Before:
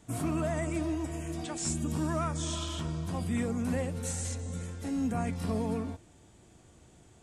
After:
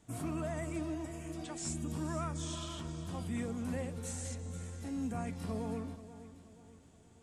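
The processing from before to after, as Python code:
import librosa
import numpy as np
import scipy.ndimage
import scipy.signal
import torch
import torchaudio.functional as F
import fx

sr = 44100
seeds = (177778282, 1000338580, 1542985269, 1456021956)

y = fx.echo_feedback(x, sr, ms=480, feedback_pct=44, wet_db=-14)
y = y * librosa.db_to_amplitude(-6.5)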